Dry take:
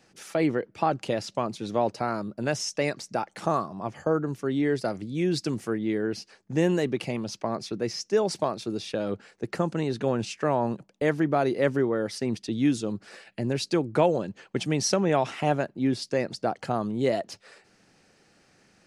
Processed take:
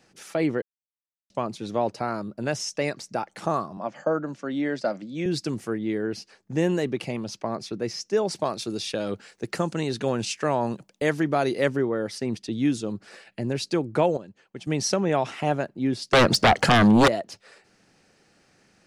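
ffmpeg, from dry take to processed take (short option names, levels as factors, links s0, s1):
-filter_complex "[0:a]asettb=1/sr,asplit=3[s0][s1][s2];[s0]atrim=end=3.774[s3];[s1]atrim=start=3.77:end=5.26,asetpts=PTS-STARTPTS,afade=t=in:d=0.004:c=qsin,afade=t=out:st=1.486:d=0.004:c=qsin,highpass=f=170:w=0.5412,highpass=f=170:w=1.3066,equalizer=f=410:t=q:w=4:g=-9,equalizer=f=580:t=q:w=4:g=8,equalizer=f=1500:t=q:w=4:g=3,lowpass=f=7400:w=0.5412,lowpass=f=7400:w=1.3066[s4];[s2]atrim=start=5.256[s5];[s3][s4]acrossfade=d=0.004:c1=hsin:c2=qsin[s6];[s6][s5]acrossfade=d=0.004:c1=qsin:c2=hsin,asettb=1/sr,asplit=3[s7][s8][s9];[s7]atrim=end=8.454[s10];[s8]atrim=start=8.45:end=11.68,asetpts=PTS-STARTPTS,afade=t=in:d=0.004:c=qsin,afade=t=out:st=3.226:d=0.004:c=qsin,highshelf=f=2600:g=9[s11];[s9]atrim=start=11.676[s12];[s10][s11]acrossfade=d=0.004:c1=hsin:c2=qsin[s13];[s13][s12]acrossfade=d=0.004:c1=qsin:c2=hsin,asettb=1/sr,asplit=3[s14][s15][s16];[s14]atrim=end=16.134[s17];[s15]atrim=start=16.13:end=17.08,asetpts=PTS-STARTPTS,afade=t=in:d=0.004:c=qsin,afade=t=out:st=0.946:d=0.004:c=qsin,aeval=exprs='0.251*sin(PI/2*5.01*val(0)/0.251)':c=same[s18];[s16]atrim=start=17.076[s19];[s17][s18]acrossfade=d=0.004:c1=hsin:c2=qsin[s20];[s20][s19]acrossfade=d=0.004:c1=qsin:c2=hsin,asplit=5[s21][s22][s23][s24][s25];[s21]atrim=end=0.62,asetpts=PTS-STARTPTS,afade=t=out:st=0.616:d=0.004:c=hsin[s26];[s22]atrim=start=0.62:end=1.3,asetpts=PTS-STARTPTS,volume=0[s27];[s23]atrim=start=1.3:end=14.172,asetpts=PTS-STARTPTS,afade=t=in:d=0.004:c=hsin[s28];[s24]atrim=start=14.168:end=14.672,asetpts=PTS-STARTPTS,volume=0.299[s29];[s25]atrim=start=14.668[s30];[s26][s27][s28]concat=n=3:v=0:a=1[s31];[s31][s29]acrossfade=d=0.004:c1=hsin:c2=hsin[s32];[s32][s30]acrossfade=d=0.004:c1=hsin:c2=hsin"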